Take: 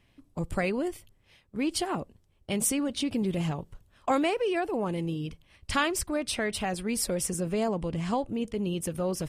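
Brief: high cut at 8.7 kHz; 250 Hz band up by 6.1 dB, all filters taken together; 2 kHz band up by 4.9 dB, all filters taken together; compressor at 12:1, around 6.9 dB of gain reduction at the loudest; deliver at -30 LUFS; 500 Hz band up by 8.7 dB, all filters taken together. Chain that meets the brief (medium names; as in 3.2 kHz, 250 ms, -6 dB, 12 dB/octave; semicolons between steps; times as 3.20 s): low-pass 8.7 kHz; peaking EQ 250 Hz +5 dB; peaking EQ 500 Hz +9 dB; peaking EQ 2 kHz +5.5 dB; compression 12:1, threshold -21 dBFS; trim -2.5 dB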